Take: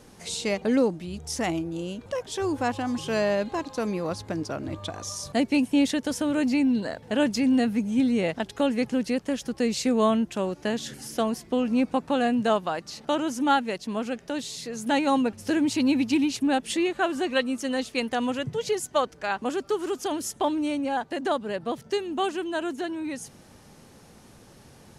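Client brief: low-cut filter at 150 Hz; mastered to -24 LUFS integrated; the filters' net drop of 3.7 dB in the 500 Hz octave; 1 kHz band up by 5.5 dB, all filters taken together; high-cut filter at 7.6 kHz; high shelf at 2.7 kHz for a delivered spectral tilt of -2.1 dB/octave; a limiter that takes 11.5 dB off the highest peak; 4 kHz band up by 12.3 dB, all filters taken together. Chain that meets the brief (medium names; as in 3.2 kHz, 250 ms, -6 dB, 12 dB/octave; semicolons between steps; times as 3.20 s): high-pass 150 Hz; low-pass 7.6 kHz; peaking EQ 500 Hz -8 dB; peaking EQ 1 kHz +8.5 dB; treble shelf 2.7 kHz +8 dB; peaking EQ 4 kHz +9 dB; trim +2.5 dB; peak limiter -12.5 dBFS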